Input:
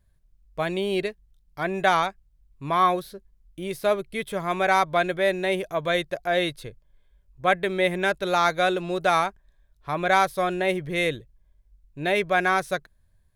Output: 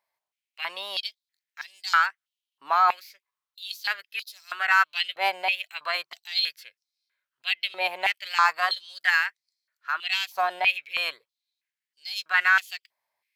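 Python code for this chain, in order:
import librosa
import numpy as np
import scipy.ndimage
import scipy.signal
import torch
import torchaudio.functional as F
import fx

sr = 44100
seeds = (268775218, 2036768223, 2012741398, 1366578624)

y = fx.peak_eq(x, sr, hz=2800.0, db=3.5, octaves=1.2)
y = fx.formant_shift(y, sr, semitones=3)
y = fx.filter_held_highpass(y, sr, hz=3.1, low_hz=860.0, high_hz=5100.0)
y = y * librosa.db_to_amplitude(-5.5)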